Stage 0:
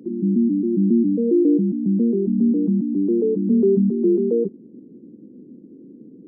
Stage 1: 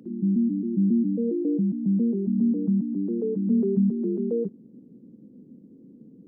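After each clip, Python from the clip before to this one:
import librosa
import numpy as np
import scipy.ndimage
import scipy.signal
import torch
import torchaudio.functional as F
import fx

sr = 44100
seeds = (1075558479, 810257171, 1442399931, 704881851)

y = fx.peak_eq(x, sr, hz=350.0, db=-11.5, octaves=0.92)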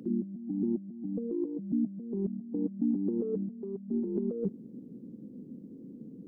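y = fx.over_compress(x, sr, threshold_db=-29.0, ratio=-0.5)
y = y * 10.0 ** (-3.0 / 20.0)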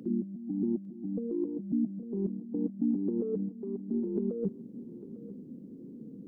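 y = fx.echo_feedback(x, sr, ms=851, feedback_pct=32, wet_db=-16)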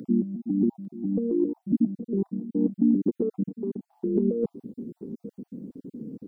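y = fx.spec_dropout(x, sr, seeds[0], share_pct=30)
y = y * 10.0 ** (8.0 / 20.0)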